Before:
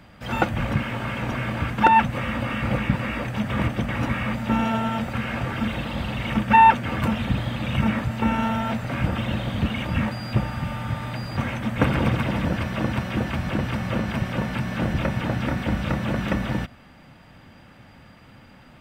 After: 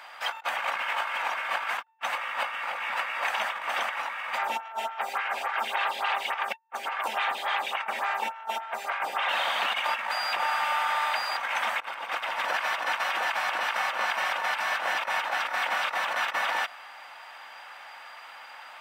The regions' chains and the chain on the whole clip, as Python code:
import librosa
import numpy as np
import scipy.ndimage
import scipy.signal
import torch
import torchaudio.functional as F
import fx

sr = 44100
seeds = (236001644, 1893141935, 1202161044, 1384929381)

y = fx.highpass(x, sr, hz=160.0, slope=12, at=(4.37, 9.28), fade=0.02)
y = fx.dmg_buzz(y, sr, base_hz=400.0, harmonics=6, level_db=-38.0, tilt_db=-4, odd_only=False, at=(4.37, 9.28), fade=0.02)
y = fx.stagger_phaser(y, sr, hz=3.5, at=(4.37, 9.28), fade=0.02)
y = scipy.signal.sosfilt(scipy.signal.cheby1(3, 1.0, 830.0, 'highpass', fs=sr, output='sos'), y)
y = fx.high_shelf(y, sr, hz=3400.0, db=-5.0)
y = fx.over_compress(y, sr, threshold_db=-37.0, ratio=-0.5)
y = y * 10.0 ** (5.5 / 20.0)